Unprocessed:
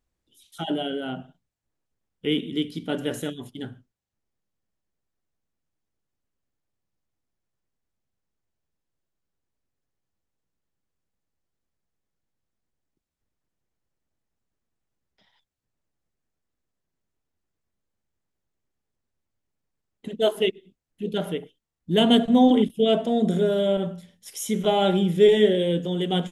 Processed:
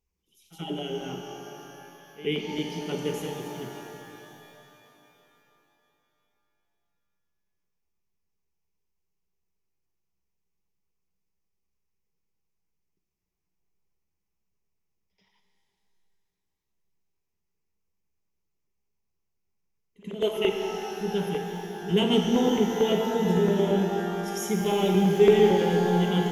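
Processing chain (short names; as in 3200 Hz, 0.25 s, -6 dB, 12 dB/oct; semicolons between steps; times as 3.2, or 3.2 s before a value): ripple EQ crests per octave 0.79, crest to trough 10 dB; LFO notch saw down 8.9 Hz 330–1800 Hz; pre-echo 84 ms -16.5 dB; shimmer reverb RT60 3.3 s, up +12 st, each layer -8 dB, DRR 3 dB; gain -4.5 dB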